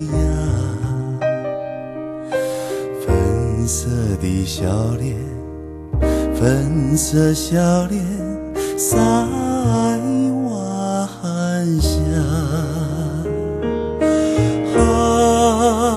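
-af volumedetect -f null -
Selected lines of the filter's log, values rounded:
mean_volume: -17.8 dB
max_volume: -1.6 dB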